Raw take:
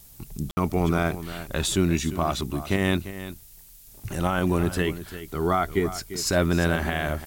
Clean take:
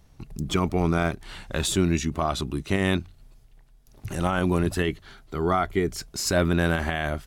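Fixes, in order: room tone fill 0.51–0.57 s; noise print and reduce 6 dB; inverse comb 347 ms -13 dB

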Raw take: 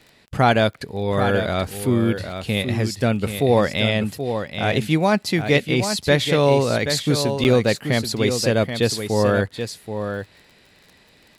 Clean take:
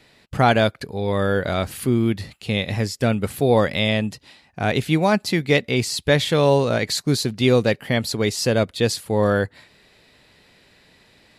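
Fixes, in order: de-click; interpolate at 7.44 s, 9.1 ms; inverse comb 780 ms -8 dB

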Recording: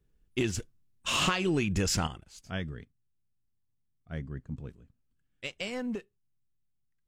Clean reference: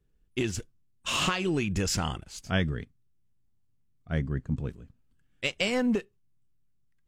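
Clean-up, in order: clip repair -16.5 dBFS; trim 0 dB, from 2.07 s +8.5 dB

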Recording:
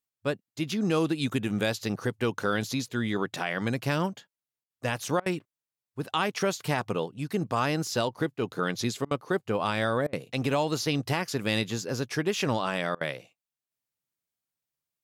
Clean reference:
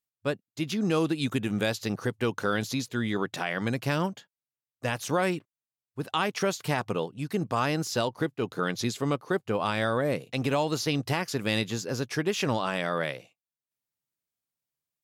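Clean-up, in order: interpolate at 4.64/5.20/9.05/10.07/12.95 s, 59 ms

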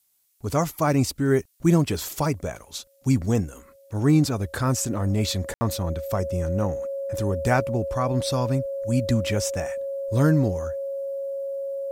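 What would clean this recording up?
band-stop 550 Hz, Q 30; room tone fill 5.54–5.61 s; expander -43 dBFS, range -21 dB

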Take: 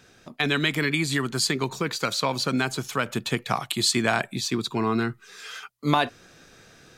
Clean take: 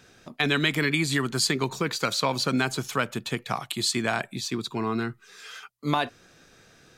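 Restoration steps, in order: gain correction -3.5 dB, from 3.06 s

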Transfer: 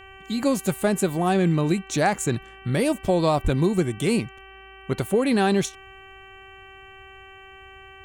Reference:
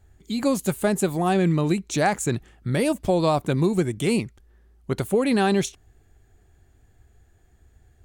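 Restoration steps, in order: de-hum 385.7 Hz, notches 8; 3.43–3.55 s: high-pass 140 Hz 24 dB/octave

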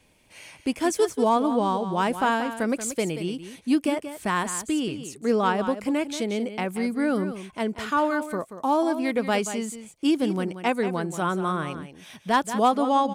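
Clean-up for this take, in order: clip repair -12 dBFS; inverse comb 182 ms -11 dB

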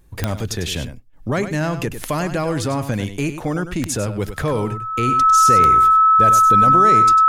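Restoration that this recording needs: de-click; band-stop 1.3 kHz, Q 30; inverse comb 99 ms -10.5 dB

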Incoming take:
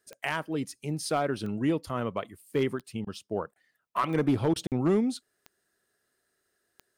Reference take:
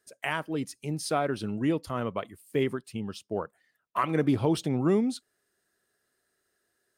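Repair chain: clip repair -18 dBFS; de-click; interpolate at 4.67 s, 48 ms; interpolate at 3.05/3.54/4.54 s, 17 ms

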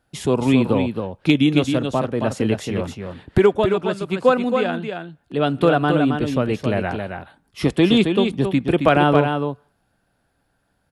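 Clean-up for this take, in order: clip repair -4 dBFS; inverse comb 270 ms -6 dB

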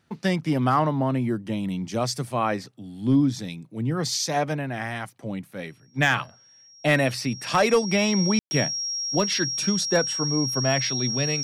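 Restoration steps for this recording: clip repair -11.5 dBFS; band-stop 5.6 kHz, Q 30; room tone fill 8.39–8.51 s

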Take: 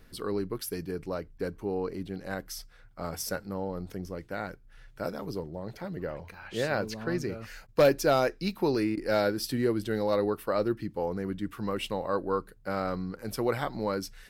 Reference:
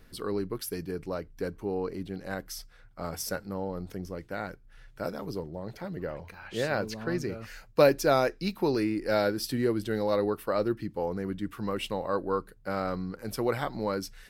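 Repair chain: clip repair -14.5 dBFS; interpolate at 1.38/7.67/8.96 s, 12 ms

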